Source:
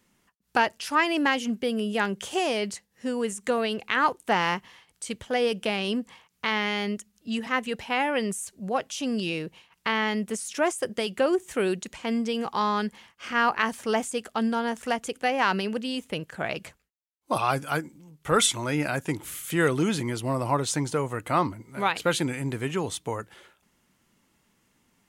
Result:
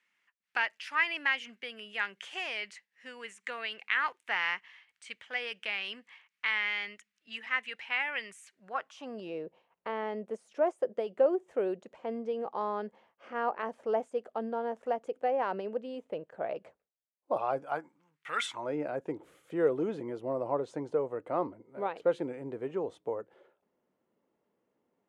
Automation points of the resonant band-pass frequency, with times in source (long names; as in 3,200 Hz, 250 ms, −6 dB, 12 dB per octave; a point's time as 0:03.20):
resonant band-pass, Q 2.2
0:08.49 2,100 Hz
0:09.36 560 Hz
0:17.61 560 Hz
0:18.34 2,500 Hz
0:18.70 500 Hz